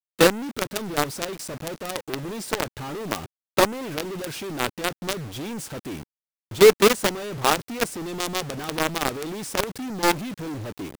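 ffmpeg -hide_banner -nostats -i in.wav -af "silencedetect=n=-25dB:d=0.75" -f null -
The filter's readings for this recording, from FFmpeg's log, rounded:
silence_start: 5.13
silence_end: 6.61 | silence_duration: 1.48
silence_start: 10.12
silence_end: 10.99 | silence_duration: 0.88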